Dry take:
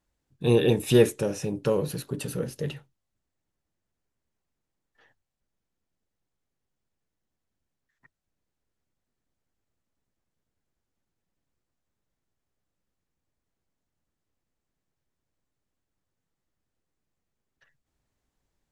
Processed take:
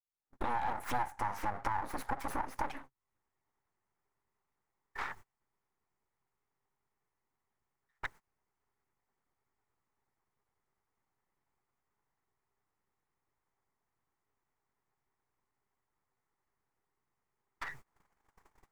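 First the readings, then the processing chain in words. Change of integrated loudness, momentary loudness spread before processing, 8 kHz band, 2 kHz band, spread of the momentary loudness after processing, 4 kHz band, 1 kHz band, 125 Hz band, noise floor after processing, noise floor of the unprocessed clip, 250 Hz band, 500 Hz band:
-13.5 dB, 13 LU, -14.5 dB, -2.0 dB, 10 LU, -16.0 dB, +8.5 dB, -20.5 dB, under -85 dBFS, -84 dBFS, -19.0 dB, -22.0 dB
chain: recorder AGC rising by 51 dB/s; graphic EQ with 31 bands 125 Hz +5 dB, 400 Hz +11 dB, 1.6 kHz -10 dB, 4 kHz -4 dB; full-wave rectifier; high-order bell 1.3 kHz +13.5 dB; compression 3:1, threshold -27 dBFS, peak gain reduction 18 dB; gate -41 dBFS, range -27 dB; trim -8.5 dB

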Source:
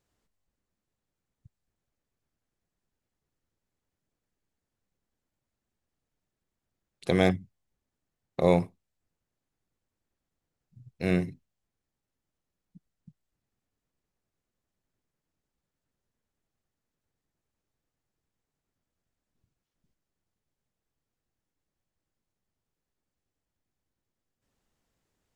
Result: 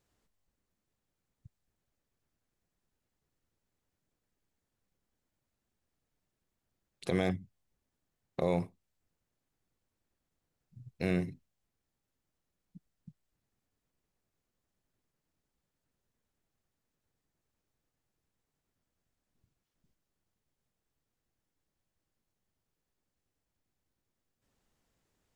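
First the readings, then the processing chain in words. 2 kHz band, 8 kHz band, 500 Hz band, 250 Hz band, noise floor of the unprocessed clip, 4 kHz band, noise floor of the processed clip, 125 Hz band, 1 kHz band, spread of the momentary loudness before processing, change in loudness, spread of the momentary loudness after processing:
-7.0 dB, no reading, -7.5 dB, -6.0 dB, under -85 dBFS, -8.0 dB, under -85 dBFS, -6.0 dB, -8.0 dB, 15 LU, -7.5 dB, 11 LU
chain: in parallel at +2 dB: compression, threshold -32 dBFS, peak gain reduction 15.5 dB; on the sum: peak limiter -11.5 dBFS, peak gain reduction 6 dB; trim -6.5 dB

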